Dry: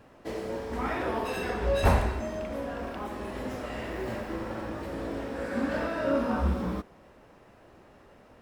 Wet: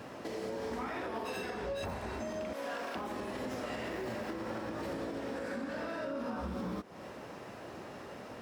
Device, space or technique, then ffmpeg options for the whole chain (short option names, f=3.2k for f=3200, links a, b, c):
broadcast voice chain: -filter_complex "[0:a]asettb=1/sr,asplit=3[a][b][c];[a]atrim=end=2.534[d];[b]atrim=start=2.53:end=2.95,asetpts=PTS-STARTPTS,afade=t=in:d=0.004:c=qsin,afade=t=out:st=0.416:d=0.004:c=qsin,highpass=f=920:p=1[e];[c]atrim=start=2.946[f];[d][e]acrossfade=d=0.004:c1=hsin:c2=qsin[g];[g][f]acrossfade=d=0.004:c1=qsin:c2=hsin,highpass=110,deesser=0.95,acompressor=threshold=-41dB:ratio=4,equalizer=f=5.3k:t=o:w=1.1:g=4,alimiter=level_in=14.5dB:limit=-24dB:level=0:latency=1:release=222,volume=-14.5dB,volume=9dB"